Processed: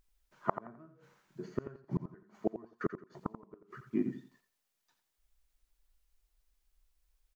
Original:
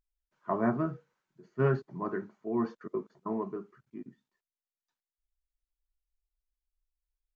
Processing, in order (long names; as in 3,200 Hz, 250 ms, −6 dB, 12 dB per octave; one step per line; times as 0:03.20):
gate with flip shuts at −31 dBFS, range −37 dB
on a send: repeating echo 86 ms, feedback 25%, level −10.5 dB
on the sum: level +12 dB